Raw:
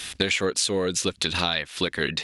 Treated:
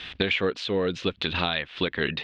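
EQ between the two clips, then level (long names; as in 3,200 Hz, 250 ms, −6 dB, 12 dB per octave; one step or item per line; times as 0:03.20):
Chebyshev low-pass filter 3,300 Hz, order 3
0.0 dB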